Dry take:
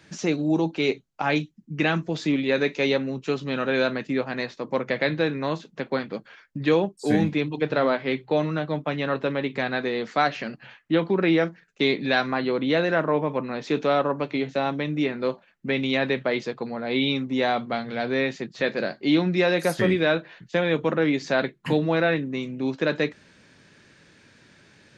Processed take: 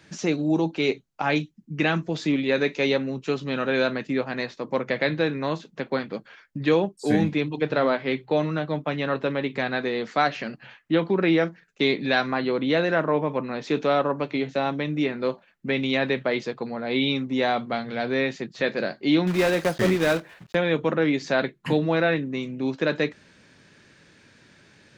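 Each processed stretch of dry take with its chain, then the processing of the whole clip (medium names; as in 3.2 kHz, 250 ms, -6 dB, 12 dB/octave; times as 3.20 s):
19.27–20.55 s: block-companded coder 3-bit + low-pass 2.7 kHz 6 dB/octave
whole clip: none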